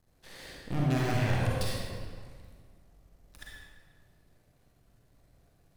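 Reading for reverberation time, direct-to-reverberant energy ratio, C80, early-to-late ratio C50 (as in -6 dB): 1.8 s, -5.0 dB, -0.5 dB, -3.5 dB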